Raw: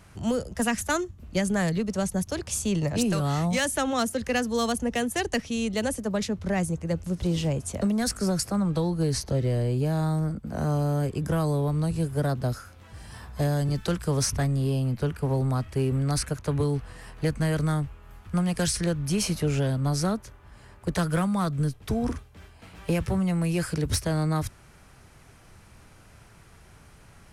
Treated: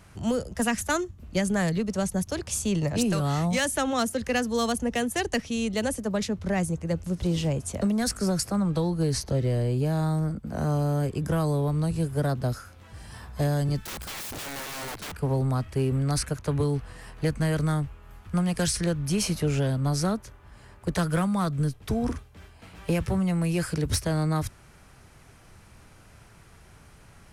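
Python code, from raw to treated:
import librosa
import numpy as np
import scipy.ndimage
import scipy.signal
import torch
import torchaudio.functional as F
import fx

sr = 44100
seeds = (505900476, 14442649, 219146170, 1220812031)

y = fx.overflow_wrap(x, sr, gain_db=31.5, at=(13.85, 15.12))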